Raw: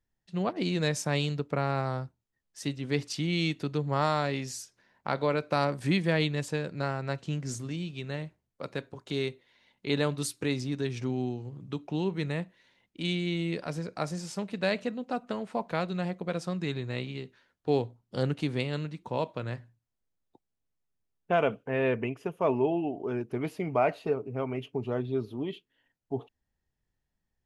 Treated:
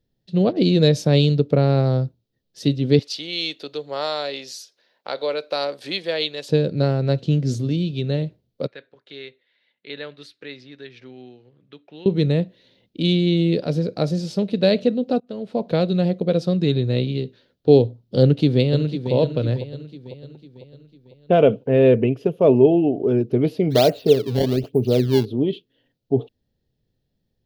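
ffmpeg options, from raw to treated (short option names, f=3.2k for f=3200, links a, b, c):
-filter_complex "[0:a]asettb=1/sr,asplit=3[a][b][c];[a]atrim=end=2.994[d];[b]atrim=start=2.99:end=6.49,asetpts=PTS-STARTPTS,afade=t=in:d=0.004:c=qsin,afade=t=out:st=3.496:d=0.004:c=qsin,highpass=790[e];[c]atrim=start=6.486[f];[d][e]acrossfade=d=0.004:c1=hsin:c2=qsin[g];[g][f]acrossfade=d=0.004:c1=qsin:c2=hsin,asettb=1/sr,asplit=3[h][i][j];[h]atrim=end=8.674[k];[i]atrim=start=8.67:end=12.06,asetpts=PTS-STARTPTS,afade=t=in:d=0.004:c=qsin,afade=t=out:st=3.386:d=0.004:c=qsin,bandpass=f=1.8k:t=q:w=2.5[l];[j]atrim=start=12.056[m];[k][l]acrossfade=d=0.004:c1=hsin:c2=qsin[n];[n][m]acrossfade=d=0.004:c1=qsin:c2=hsin,asplit=2[o][p];[p]afade=t=in:st=18.22:d=0.01,afade=t=out:st=19.13:d=0.01,aecho=0:1:500|1000|1500|2000|2500:0.316228|0.158114|0.0790569|0.0395285|0.0197642[q];[o][q]amix=inputs=2:normalize=0,asplit=3[r][s][t];[r]afade=t=out:st=23.7:d=0.02[u];[s]acrusher=samples=20:mix=1:aa=0.000001:lfo=1:lforange=32:lforate=1.2,afade=t=in:st=23.7:d=0.02,afade=t=out:st=25.24:d=0.02[v];[t]afade=t=in:st=25.24:d=0.02[w];[u][v][w]amix=inputs=3:normalize=0,asplit=2[x][y];[x]atrim=end=15.2,asetpts=PTS-STARTPTS,afade=t=out:st=15.196:d=0.004:c=hsin:silence=0.0668344[z];[y]atrim=start=15.2,asetpts=PTS-STARTPTS,afade=t=in:d=0.54:silence=0.0668344[aa];[z][aa]concat=n=2:v=0:a=1,equalizer=f=125:t=o:w=1:g=8,equalizer=f=250:t=o:w=1:g=5,equalizer=f=500:t=o:w=1:g=10,equalizer=f=1k:t=o:w=1:g=-9,equalizer=f=2k:t=o:w=1:g=-6,equalizer=f=4k:t=o:w=1:g=10,equalizer=f=8k:t=o:w=1:g=-11,volume=5.5dB"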